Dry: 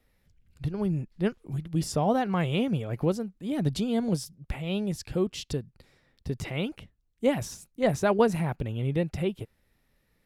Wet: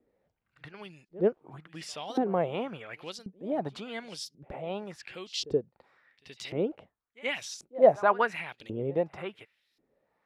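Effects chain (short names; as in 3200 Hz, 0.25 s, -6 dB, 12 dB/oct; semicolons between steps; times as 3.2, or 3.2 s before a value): LFO band-pass saw up 0.92 Hz 330–5000 Hz; reverse echo 76 ms -20.5 dB; gain +8.5 dB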